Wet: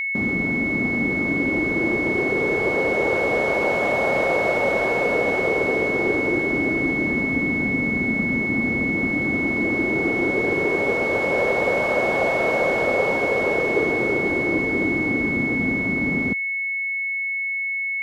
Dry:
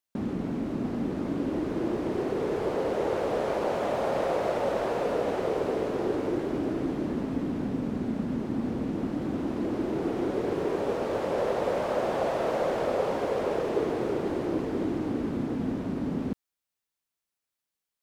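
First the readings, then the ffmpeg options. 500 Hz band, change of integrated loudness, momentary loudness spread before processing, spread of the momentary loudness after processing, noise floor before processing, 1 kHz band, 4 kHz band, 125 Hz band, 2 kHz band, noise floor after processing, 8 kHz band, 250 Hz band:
+5.5 dB, +9.0 dB, 3 LU, 2 LU, below −85 dBFS, +5.5 dB, +5.5 dB, +5.5 dB, +23.0 dB, −26 dBFS, can't be measured, +5.5 dB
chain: -af "aeval=exprs='val(0)+0.0398*sin(2*PI*2200*n/s)':channel_layout=same,volume=5.5dB"

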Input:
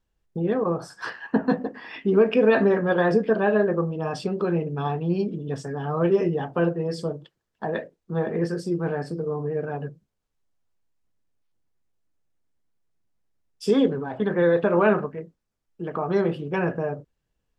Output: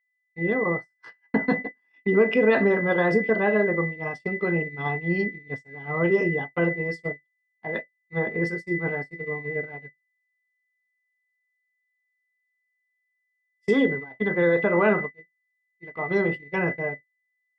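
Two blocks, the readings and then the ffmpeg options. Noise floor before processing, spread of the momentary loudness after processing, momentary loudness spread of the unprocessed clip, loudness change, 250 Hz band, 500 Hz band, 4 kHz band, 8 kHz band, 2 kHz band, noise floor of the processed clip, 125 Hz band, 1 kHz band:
−79 dBFS, 13 LU, 13 LU, −0.5 dB, −2.0 dB, −2.0 dB, −3.5 dB, can't be measured, +6.5 dB, −77 dBFS, −3.0 dB, −2.5 dB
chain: -af "aeval=exprs='val(0)+0.0501*sin(2*PI*2000*n/s)':channel_layout=same,agate=range=-47dB:threshold=-24dB:ratio=16:detection=peak,volume=-1.5dB"

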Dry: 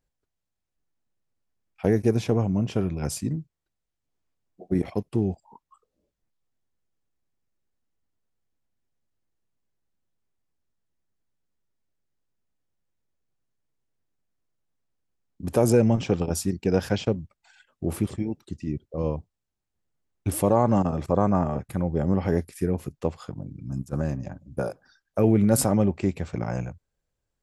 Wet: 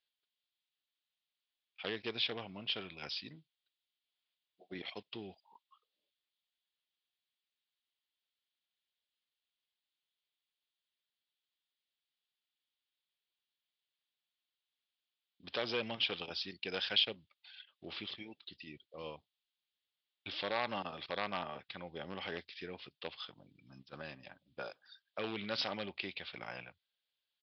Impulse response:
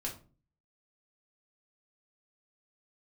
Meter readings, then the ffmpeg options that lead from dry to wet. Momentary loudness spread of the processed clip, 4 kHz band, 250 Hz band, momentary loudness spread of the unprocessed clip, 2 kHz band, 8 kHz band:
17 LU, +6.5 dB, −24.0 dB, 13 LU, −1.0 dB, below −30 dB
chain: -af "aresample=11025,volume=12dB,asoftclip=hard,volume=-12dB,aresample=44100,bandpass=frequency=3400:width_type=q:width=3.5:csg=0,volume=10.5dB"

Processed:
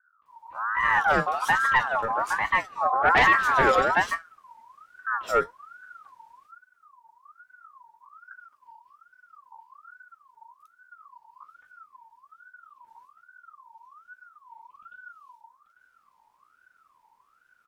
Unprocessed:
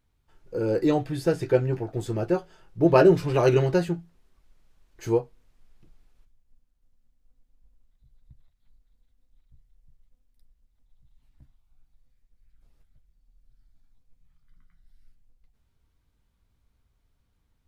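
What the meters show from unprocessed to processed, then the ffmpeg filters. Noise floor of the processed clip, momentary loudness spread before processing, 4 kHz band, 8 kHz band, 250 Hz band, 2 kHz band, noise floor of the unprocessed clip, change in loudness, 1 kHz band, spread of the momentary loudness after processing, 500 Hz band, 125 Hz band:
−67 dBFS, 13 LU, +6.5 dB, +3.5 dB, −13.0 dB, +15.5 dB, −71 dBFS, +1.0 dB, +11.5 dB, 13 LU, −7.0 dB, −14.5 dB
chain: -filter_complex "[0:a]acrossover=split=250|2900[link_01][link_02][link_03];[link_02]adelay=220[link_04];[link_03]adelay=260[link_05];[link_01][link_04][link_05]amix=inputs=3:normalize=0,asoftclip=type=tanh:threshold=-19.5dB,aeval=exprs='val(0)*sin(2*PI*1200*n/s+1200*0.25/1.2*sin(2*PI*1.2*n/s))':channel_layout=same,volume=7.5dB"

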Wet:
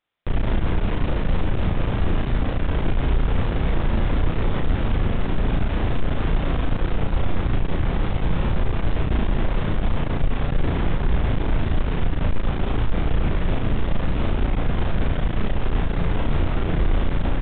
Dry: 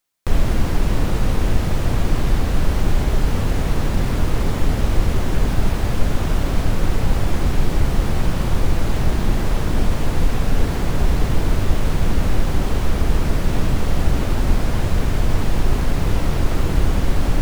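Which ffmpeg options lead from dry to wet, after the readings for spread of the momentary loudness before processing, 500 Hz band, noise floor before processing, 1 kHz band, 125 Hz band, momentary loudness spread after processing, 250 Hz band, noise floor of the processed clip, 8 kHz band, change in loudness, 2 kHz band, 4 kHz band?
1 LU, −2.5 dB, −22 dBFS, −2.5 dB, −3.0 dB, 2 LU, −2.5 dB, −25 dBFS, below −40 dB, −3.0 dB, −2.5 dB, −5.0 dB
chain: -filter_complex "[0:a]aresample=8000,asoftclip=type=tanh:threshold=-17dB,aresample=44100,asplit=2[link_01][link_02];[link_02]adelay=35,volume=-2.5dB[link_03];[link_01][link_03]amix=inputs=2:normalize=0"

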